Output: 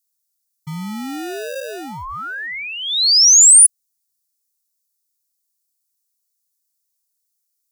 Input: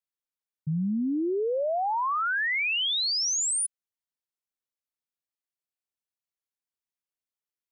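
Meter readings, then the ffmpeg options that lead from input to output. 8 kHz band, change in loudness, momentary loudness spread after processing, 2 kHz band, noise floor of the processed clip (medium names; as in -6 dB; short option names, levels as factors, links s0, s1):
+19.0 dB, +18.0 dB, 22 LU, 0.0 dB, -74 dBFS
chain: -filter_complex "[0:a]acrossover=split=850[s0][s1];[s0]acrusher=samples=41:mix=1:aa=0.000001[s2];[s1]aexciter=amount=7.7:drive=5.6:freq=4200[s3];[s2][s3]amix=inputs=2:normalize=0"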